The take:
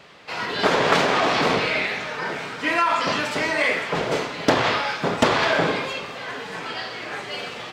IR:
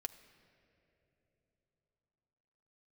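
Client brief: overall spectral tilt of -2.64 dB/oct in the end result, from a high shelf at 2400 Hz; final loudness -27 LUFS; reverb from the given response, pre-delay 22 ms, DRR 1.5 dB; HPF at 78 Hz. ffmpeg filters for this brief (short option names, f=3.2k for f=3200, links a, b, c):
-filter_complex "[0:a]highpass=78,highshelf=f=2.4k:g=7,asplit=2[a][b];[1:a]atrim=start_sample=2205,adelay=22[c];[b][c]afir=irnorm=-1:irlink=0,volume=1.5dB[d];[a][d]amix=inputs=2:normalize=0,volume=-9.5dB"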